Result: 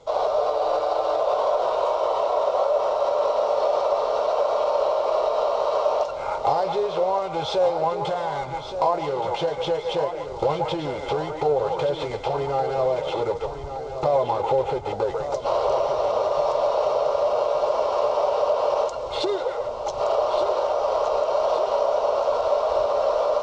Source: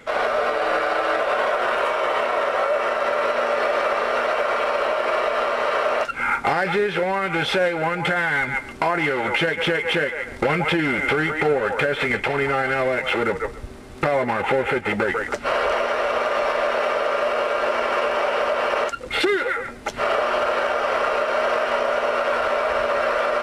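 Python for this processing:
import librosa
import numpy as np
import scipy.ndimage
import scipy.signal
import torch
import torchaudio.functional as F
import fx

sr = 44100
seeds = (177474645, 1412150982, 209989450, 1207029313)

p1 = fx.curve_eq(x, sr, hz=(140.0, 210.0, 510.0, 990.0, 1700.0, 2700.0, 3800.0, 6700.0, 12000.0), db=(0, -15, 3, 3, -23, -12, 0, 0, -27))
p2 = p1 + fx.echo_feedback(p1, sr, ms=1171, feedback_pct=54, wet_db=-9.5, dry=0)
y = p2 * 10.0 ** (-2.0 / 20.0)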